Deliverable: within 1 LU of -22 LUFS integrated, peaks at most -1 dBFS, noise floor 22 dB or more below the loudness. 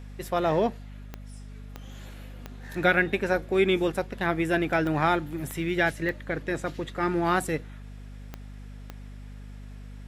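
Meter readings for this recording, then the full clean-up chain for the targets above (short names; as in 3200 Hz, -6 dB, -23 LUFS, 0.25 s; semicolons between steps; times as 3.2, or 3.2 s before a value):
clicks 8; hum 50 Hz; harmonics up to 250 Hz; hum level -39 dBFS; loudness -26.5 LUFS; peak -8.0 dBFS; loudness target -22.0 LUFS
-> de-click; notches 50/100/150/200/250 Hz; gain +4.5 dB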